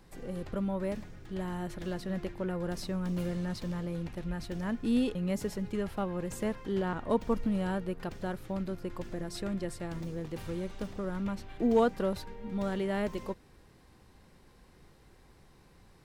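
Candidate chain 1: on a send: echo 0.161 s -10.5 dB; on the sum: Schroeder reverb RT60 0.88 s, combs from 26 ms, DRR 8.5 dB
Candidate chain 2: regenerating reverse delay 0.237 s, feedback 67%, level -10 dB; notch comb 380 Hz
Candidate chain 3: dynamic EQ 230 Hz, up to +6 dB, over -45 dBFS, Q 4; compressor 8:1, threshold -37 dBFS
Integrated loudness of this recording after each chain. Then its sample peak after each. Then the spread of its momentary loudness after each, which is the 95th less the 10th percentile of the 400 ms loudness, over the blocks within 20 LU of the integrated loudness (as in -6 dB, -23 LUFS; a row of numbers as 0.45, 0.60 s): -33.5, -34.5, -42.0 LUFS; -16.5, -15.5, -26.5 dBFS; 10, 10, 20 LU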